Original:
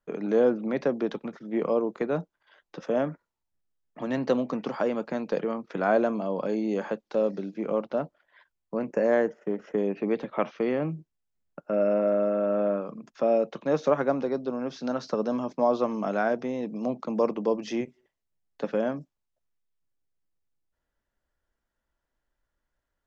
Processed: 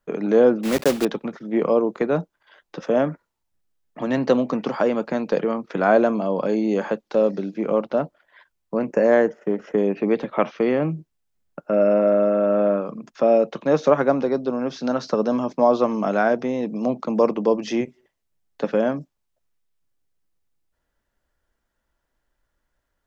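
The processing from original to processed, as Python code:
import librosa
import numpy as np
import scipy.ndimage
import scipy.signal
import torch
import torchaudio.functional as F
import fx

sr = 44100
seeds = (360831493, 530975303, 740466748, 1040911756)

y = fx.block_float(x, sr, bits=3, at=(0.63, 1.07))
y = y * librosa.db_to_amplitude(6.5)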